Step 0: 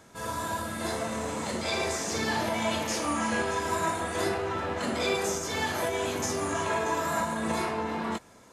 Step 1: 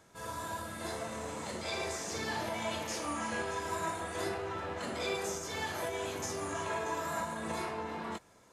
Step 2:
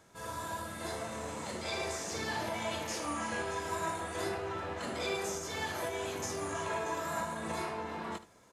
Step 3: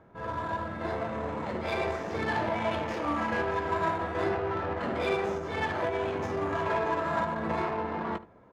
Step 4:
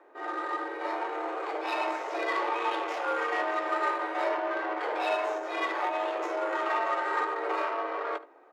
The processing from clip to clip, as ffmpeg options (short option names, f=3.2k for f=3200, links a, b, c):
-af "equalizer=f=240:t=o:w=0.31:g=-5.5,volume=-7dB"
-af "aecho=1:1:74:0.178"
-af "adynamicsmooth=sensitivity=6:basefreq=1.4k,bass=f=250:g=0,treble=f=4k:g=-7,volume=7.5dB"
-af "afreqshift=240"